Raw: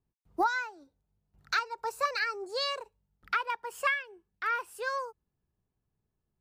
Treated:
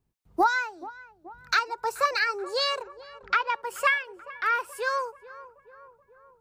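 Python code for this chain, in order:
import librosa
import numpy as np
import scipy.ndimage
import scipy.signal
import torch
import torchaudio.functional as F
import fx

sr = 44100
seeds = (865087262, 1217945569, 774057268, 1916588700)

y = fx.brickwall_lowpass(x, sr, high_hz=7500.0, at=(2.82, 3.55))
y = fx.echo_tape(y, sr, ms=431, feedback_pct=67, wet_db=-16, lp_hz=1400.0, drive_db=13.0, wow_cents=17)
y = F.gain(torch.from_numpy(y), 5.5).numpy()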